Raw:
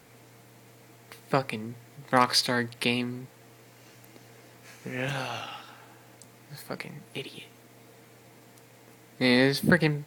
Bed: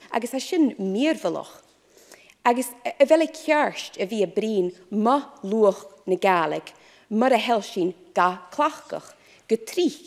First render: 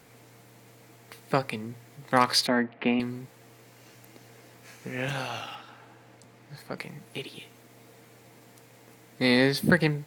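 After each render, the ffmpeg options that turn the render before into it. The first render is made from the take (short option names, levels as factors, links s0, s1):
-filter_complex "[0:a]asettb=1/sr,asplit=3[s0][s1][s2];[s0]atrim=end=2.474[s3];[s1]atrim=start=2.47:end=3,asetpts=PTS-STARTPTS,afade=t=in:d=0.004:c=qsin,afade=t=out:st=0.526:d=0.004:c=qsin,highpass=110,equalizer=f=120:t=q:w=4:g=-7,equalizer=f=250:t=q:w=4:g=6,equalizer=f=680:t=q:w=4:g=8,lowpass=f=2400:w=0.5412,lowpass=f=2400:w=1.3066[s4];[s2]atrim=start=2.996[s5];[s3][s4]acrossfade=d=0.004:c1=hsin:c2=qsin[s6];[s6][s5]acrossfade=d=0.004:c1=qsin:c2=hsin,asettb=1/sr,asplit=3[s7][s8][s9];[s7]atrim=end=5.554[s10];[s8]atrim=start=5.55:end=6.78,asetpts=PTS-STARTPTS,afade=t=in:d=0.004:c=qsin,afade=t=out:st=1.226:d=0.004:c=qsin,lowpass=f=3800:p=1[s11];[s9]atrim=start=6.776[s12];[s10][s11]acrossfade=d=0.004:c1=hsin:c2=qsin[s13];[s13][s12]acrossfade=d=0.004:c1=qsin:c2=hsin"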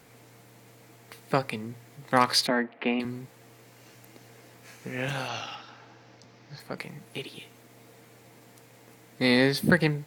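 -filter_complex "[0:a]asettb=1/sr,asplit=3[s0][s1][s2];[s0]atrim=end=2.504[s3];[s1]atrim=start=2.5:end=3.05,asetpts=PTS-STARTPTS,afade=t=in:d=0.004:c=qsin,afade=t=out:st=0.546:d=0.004:c=qsin,highpass=240[s4];[s2]atrim=start=3.046[s5];[s3][s4]acrossfade=d=0.004:c1=hsin:c2=qsin[s6];[s6][s5]acrossfade=d=0.004:c1=qsin:c2=hsin,asettb=1/sr,asplit=3[s7][s8][s9];[s7]atrim=end=5.284[s10];[s8]atrim=start=5.28:end=6.6,asetpts=PTS-STARTPTS,afade=t=in:d=0.004:c=qsin,afade=t=out:st=1.316:d=0.004:c=qsin,highshelf=f=7100:t=q:w=3:g=-9[s11];[s9]atrim=start=6.596[s12];[s10][s11]acrossfade=d=0.004:c1=hsin:c2=qsin[s13];[s13][s12]acrossfade=d=0.004:c1=qsin:c2=hsin"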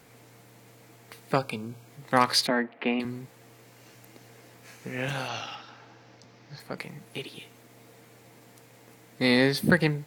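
-filter_complex "[0:a]asettb=1/sr,asplit=3[s0][s1][s2];[s0]atrim=end=1.364[s3];[s1]atrim=start=1.36:end=1.88,asetpts=PTS-STARTPTS,afade=t=in:d=0.004:c=qsin,afade=t=out:st=0.516:d=0.004:c=qsin,asuperstop=centerf=1900:order=20:qfactor=3.9[s4];[s2]atrim=start=1.876[s5];[s3][s4]acrossfade=d=0.004:c1=hsin:c2=qsin[s6];[s6][s5]acrossfade=d=0.004:c1=qsin:c2=hsin"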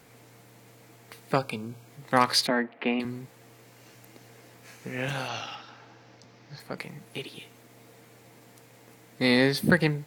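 -af anull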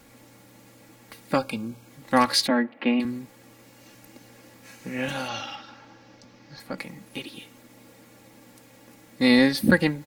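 -af "bass=f=250:g=5,treble=f=4000:g=1,aecho=1:1:3.6:0.64"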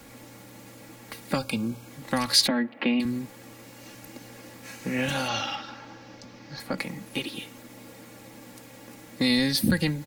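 -filter_complex "[0:a]asplit=2[s0][s1];[s1]alimiter=limit=0.158:level=0:latency=1:release=17,volume=0.794[s2];[s0][s2]amix=inputs=2:normalize=0,acrossover=split=170|3000[s3][s4][s5];[s4]acompressor=threshold=0.0501:ratio=6[s6];[s3][s6][s5]amix=inputs=3:normalize=0"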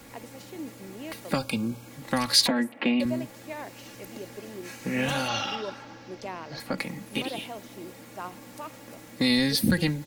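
-filter_complex "[1:a]volume=0.119[s0];[0:a][s0]amix=inputs=2:normalize=0"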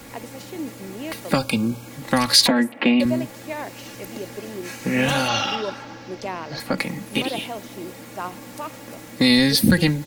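-af "volume=2.24,alimiter=limit=0.794:level=0:latency=1"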